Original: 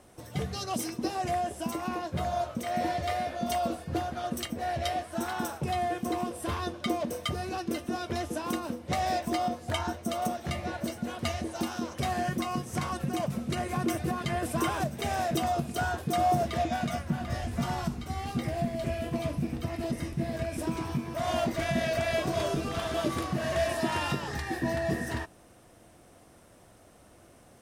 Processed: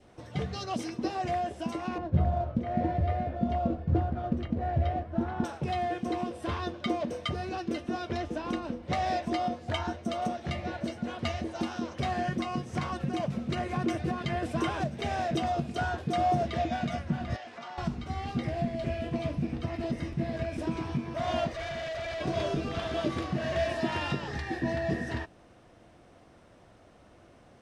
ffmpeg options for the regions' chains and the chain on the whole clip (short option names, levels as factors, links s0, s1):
-filter_complex "[0:a]asettb=1/sr,asplit=3[s0][s1][s2];[s0]atrim=end=1.984[s3];[s1]atrim=start=1.98:end=5.44,asetpts=PTS-STARTPTS,afade=t=in:d=0.004:c=qsin,afade=t=out:st=3.456:d=0.004:c=qsin,lowpass=f=1100:p=1,acrusher=bits=6:mode=log:mix=0:aa=0.000001,aemphasis=mode=reproduction:type=bsi[s4];[s2]atrim=start=5.436[s5];[s3][s4]acrossfade=d=0.004:c1=hsin:c2=qsin[s6];[s6][s5]acrossfade=d=0.004:c1=qsin:c2=hsin,asettb=1/sr,asplit=3[s7][s8][s9];[s7]atrim=end=8.174[s10];[s8]atrim=start=8.17:end=8.83,asetpts=PTS-STARTPTS,afade=t=in:d=0.004:c=qsin,afade=t=out:st=0.656:d=0.004:c=qsin,highshelf=f=8100:g=-9.5,aeval=exprs='val(0)+0.00282*(sin(2*PI*50*n/s)+sin(2*PI*2*50*n/s)/2+sin(2*PI*3*50*n/s)/3+sin(2*PI*4*50*n/s)/4+sin(2*PI*5*50*n/s)/5)':c=same[s11];[s9]atrim=start=8.826[s12];[s10][s11]acrossfade=d=0.004:c1=hsin:c2=qsin[s13];[s13][s12]acrossfade=d=0.004:c1=qsin:c2=hsin,asettb=1/sr,asplit=3[s14][s15][s16];[s14]atrim=end=17.364[s17];[s15]atrim=start=17.36:end=17.78,asetpts=PTS-STARTPTS,afade=t=in:d=0.004:c=qsin,afade=t=out:st=0.416:d=0.004:c=qsin,highpass=560,lowpass=6100,acompressor=threshold=0.0126:ratio=6:attack=3.2:release=140:knee=1:detection=peak[s18];[s16]atrim=start=17.776[s19];[s17][s18]acrossfade=d=0.004:c1=hsin:c2=qsin[s20];[s20][s19]acrossfade=d=0.004:c1=qsin:c2=hsin,asettb=1/sr,asplit=3[s21][s22][s23];[s21]atrim=end=21.474[s24];[s22]atrim=start=21.47:end=22.21,asetpts=PTS-STARTPTS,afade=t=in:d=0.004:c=qsin,afade=t=out:st=0.736:d=0.004:c=qsin,equalizer=f=190:t=o:w=1.2:g=-11.5,aecho=1:1:1.7:0.47,atrim=end_sample=32634,asoftclip=type=hard:threshold=0.0224[s25];[s23]atrim=start=22.206[s26];[s24][s25]acrossfade=d=0.004:c1=hsin:c2=qsin[s27];[s27][s26]acrossfade=d=0.004:c1=qsin:c2=hsin,lowpass=4500,adynamicequalizer=threshold=0.00562:dfrequency=1100:dqfactor=1.6:tfrequency=1100:tqfactor=1.6:attack=5:release=100:ratio=0.375:range=2:mode=cutabove:tftype=bell"